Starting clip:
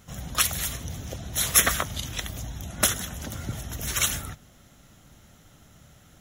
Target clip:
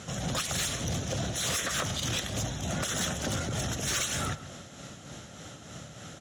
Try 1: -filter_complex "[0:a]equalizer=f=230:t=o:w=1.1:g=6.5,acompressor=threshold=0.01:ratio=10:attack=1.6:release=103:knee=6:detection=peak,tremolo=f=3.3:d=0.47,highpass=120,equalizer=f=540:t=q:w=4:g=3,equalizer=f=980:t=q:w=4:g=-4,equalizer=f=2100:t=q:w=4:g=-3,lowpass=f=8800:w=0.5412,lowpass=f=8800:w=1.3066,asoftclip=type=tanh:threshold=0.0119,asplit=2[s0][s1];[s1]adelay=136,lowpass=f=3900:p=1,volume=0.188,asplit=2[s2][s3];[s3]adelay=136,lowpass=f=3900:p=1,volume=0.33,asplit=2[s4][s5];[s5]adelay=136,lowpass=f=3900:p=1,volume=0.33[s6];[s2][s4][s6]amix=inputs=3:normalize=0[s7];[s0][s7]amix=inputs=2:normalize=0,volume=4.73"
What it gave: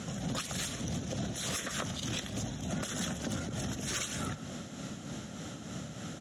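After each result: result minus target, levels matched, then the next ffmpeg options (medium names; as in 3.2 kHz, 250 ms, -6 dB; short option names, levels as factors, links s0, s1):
compression: peak gain reduction +8 dB; 250 Hz band +6.0 dB
-filter_complex "[0:a]equalizer=f=230:t=o:w=1.1:g=6.5,acompressor=threshold=0.0282:ratio=10:attack=1.6:release=103:knee=6:detection=peak,tremolo=f=3.3:d=0.47,highpass=120,equalizer=f=540:t=q:w=4:g=3,equalizer=f=980:t=q:w=4:g=-4,equalizer=f=2100:t=q:w=4:g=-3,lowpass=f=8800:w=0.5412,lowpass=f=8800:w=1.3066,asoftclip=type=tanh:threshold=0.0119,asplit=2[s0][s1];[s1]adelay=136,lowpass=f=3900:p=1,volume=0.188,asplit=2[s2][s3];[s3]adelay=136,lowpass=f=3900:p=1,volume=0.33,asplit=2[s4][s5];[s5]adelay=136,lowpass=f=3900:p=1,volume=0.33[s6];[s2][s4][s6]amix=inputs=3:normalize=0[s7];[s0][s7]amix=inputs=2:normalize=0,volume=4.73"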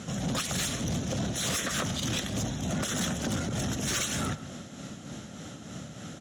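250 Hz band +4.5 dB
-filter_complex "[0:a]equalizer=f=230:t=o:w=1.1:g=-2,acompressor=threshold=0.0282:ratio=10:attack=1.6:release=103:knee=6:detection=peak,tremolo=f=3.3:d=0.47,highpass=120,equalizer=f=540:t=q:w=4:g=3,equalizer=f=980:t=q:w=4:g=-4,equalizer=f=2100:t=q:w=4:g=-3,lowpass=f=8800:w=0.5412,lowpass=f=8800:w=1.3066,asoftclip=type=tanh:threshold=0.0119,asplit=2[s0][s1];[s1]adelay=136,lowpass=f=3900:p=1,volume=0.188,asplit=2[s2][s3];[s3]adelay=136,lowpass=f=3900:p=1,volume=0.33,asplit=2[s4][s5];[s5]adelay=136,lowpass=f=3900:p=1,volume=0.33[s6];[s2][s4][s6]amix=inputs=3:normalize=0[s7];[s0][s7]amix=inputs=2:normalize=0,volume=4.73"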